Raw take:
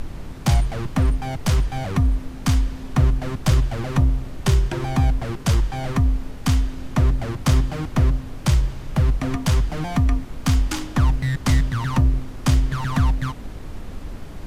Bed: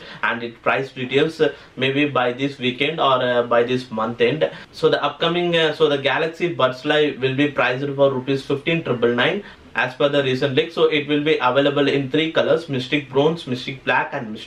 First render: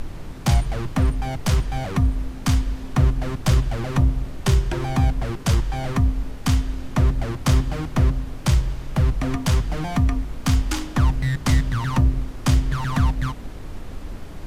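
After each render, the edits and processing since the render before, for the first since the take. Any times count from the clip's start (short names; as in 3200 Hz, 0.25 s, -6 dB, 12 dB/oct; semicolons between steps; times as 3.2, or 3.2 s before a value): de-hum 50 Hz, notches 5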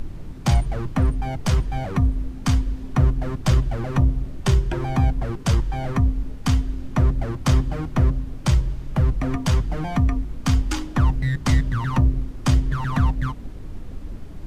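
denoiser 8 dB, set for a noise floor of -35 dBFS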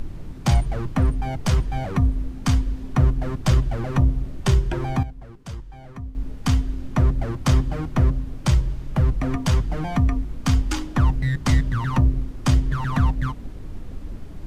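4.59–6.59 dip -15 dB, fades 0.44 s logarithmic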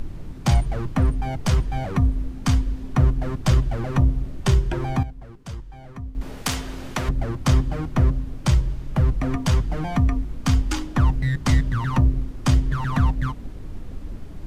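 6.21–7.09 spectral compressor 2:1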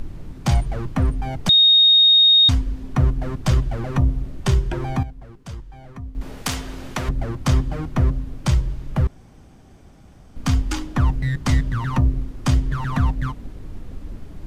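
1.49–2.49 bleep 3720 Hz -9.5 dBFS; 9.07–10.36 room tone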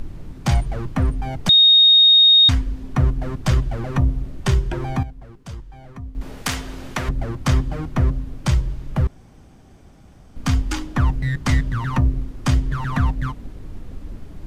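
dynamic EQ 1800 Hz, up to +7 dB, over -34 dBFS, Q 1.3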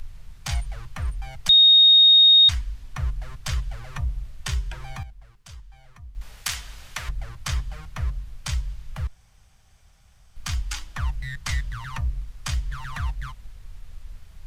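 passive tone stack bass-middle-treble 10-0-10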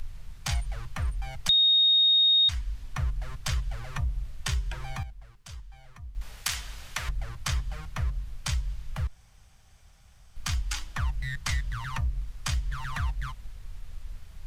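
compressor 2:1, threshold -26 dBFS, peak gain reduction 7.5 dB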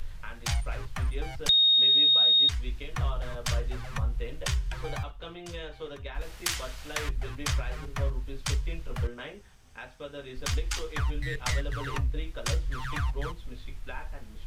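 add bed -23.5 dB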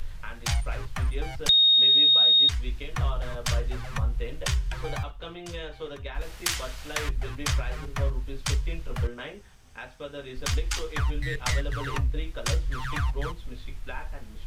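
gain +2.5 dB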